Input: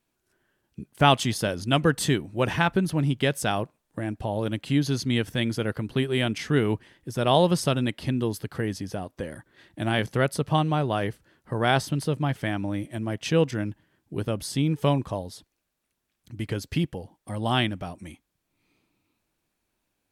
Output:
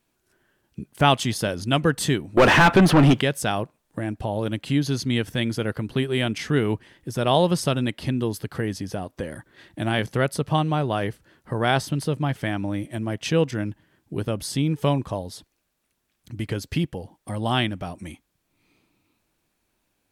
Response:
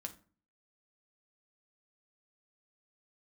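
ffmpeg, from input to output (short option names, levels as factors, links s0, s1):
-filter_complex "[0:a]asplit=2[s0][s1];[s1]acompressor=threshold=0.0158:ratio=6,volume=0.75[s2];[s0][s2]amix=inputs=2:normalize=0,asettb=1/sr,asplit=3[s3][s4][s5];[s3]atrim=end=2.374[s6];[s4]atrim=start=2.37:end=3.21,asetpts=PTS-STARTPTS,afade=t=in:d=0.004:c=qsin,afade=t=out:st=0.836:d=0.004:c=qsin,asplit=2[s7][s8];[s8]highpass=f=720:p=1,volume=39.8,asoftclip=type=tanh:threshold=0.531[s9];[s7][s9]amix=inputs=2:normalize=0,lowpass=f=1700:p=1,volume=0.501[s10];[s5]atrim=start=3.206[s11];[s6][s10]acrossfade=d=0.004:c1=hsin:c2=qsin[s12];[s12][s11]acrossfade=d=0.004:c1=qsin:c2=hsin"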